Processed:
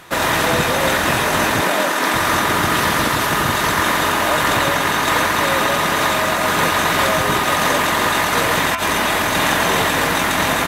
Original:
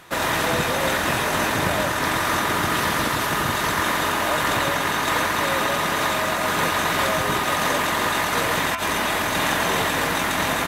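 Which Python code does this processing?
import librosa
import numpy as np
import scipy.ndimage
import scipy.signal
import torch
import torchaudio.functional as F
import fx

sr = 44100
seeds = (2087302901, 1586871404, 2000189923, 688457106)

y = fx.highpass(x, sr, hz=210.0, slope=24, at=(1.61, 2.14))
y = y * 10.0 ** (5.0 / 20.0)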